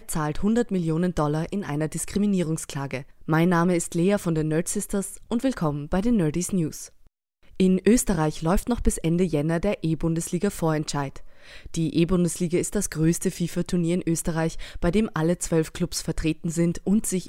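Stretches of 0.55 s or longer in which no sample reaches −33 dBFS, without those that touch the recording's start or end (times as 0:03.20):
0:06.86–0:07.60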